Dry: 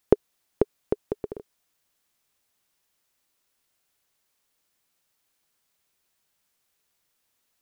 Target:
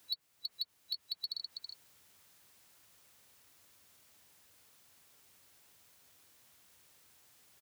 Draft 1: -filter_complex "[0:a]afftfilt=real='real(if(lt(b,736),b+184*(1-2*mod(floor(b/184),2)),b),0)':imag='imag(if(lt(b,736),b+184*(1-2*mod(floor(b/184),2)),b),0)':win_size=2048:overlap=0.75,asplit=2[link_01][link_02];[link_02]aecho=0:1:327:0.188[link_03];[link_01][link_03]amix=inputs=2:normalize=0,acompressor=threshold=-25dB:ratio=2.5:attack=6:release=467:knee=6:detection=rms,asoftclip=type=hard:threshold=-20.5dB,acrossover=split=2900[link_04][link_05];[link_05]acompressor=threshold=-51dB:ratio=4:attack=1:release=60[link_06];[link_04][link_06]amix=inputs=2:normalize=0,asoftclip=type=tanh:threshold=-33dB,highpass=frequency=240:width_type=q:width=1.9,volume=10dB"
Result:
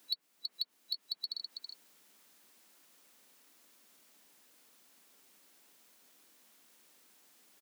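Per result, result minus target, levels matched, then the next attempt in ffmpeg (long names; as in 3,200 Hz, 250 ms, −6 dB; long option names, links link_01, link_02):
hard clipping: distortion −5 dB; 250 Hz band +3.0 dB
-filter_complex "[0:a]afftfilt=real='real(if(lt(b,736),b+184*(1-2*mod(floor(b/184),2)),b),0)':imag='imag(if(lt(b,736),b+184*(1-2*mod(floor(b/184),2)),b),0)':win_size=2048:overlap=0.75,asplit=2[link_01][link_02];[link_02]aecho=0:1:327:0.188[link_03];[link_01][link_03]amix=inputs=2:normalize=0,acompressor=threshold=-25dB:ratio=2.5:attack=6:release=467:knee=6:detection=rms,asoftclip=type=hard:threshold=-27.5dB,acrossover=split=2900[link_04][link_05];[link_05]acompressor=threshold=-51dB:ratio=4:attack=1:release=60[link_06];[link_04][link_06]amix=inputs=2:normalize=0,asoftclip=type=tanh:threshold=-33dB,highpass=frequency=240:width_type=q:width=1.9,volume=10dB"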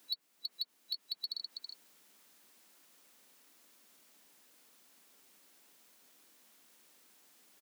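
250 Hz band +3.5 dB
-filter_complex "[0:a]afftfilt=real='real(if(lt(b,736),b+184*(1-2*mod(floor(b/184),2)),b),0)':imag='imag(if(lt(b,736),b+184*(1-2*mod(floor(b/184),2)),b),0)':win_size=2048:overlap=0.75,asplit=2[link_01][link_02];[link_02]aecho=0:1:327:0.188[link_03];[link_01][link_03]amix=inputs=2:normalize=0,acompressor=threshold=-25dB:ratio=2.5:attack=6:release=467:knee=6:detection=rms,asoftclip=type=hard:threshold=-27.5dB,acrossover=split=2900[link_04][link_05];[link_05]acompressor=threshold=-51dB:ratio=4:attack=1:release=60[link_06];[link_04][link_06]amix=inputs=2:normalize=0,asoftclip=type=tanh:threshold=-33dB,highpass=frequency=80:width_type=q:width=1.9,volume=10dB"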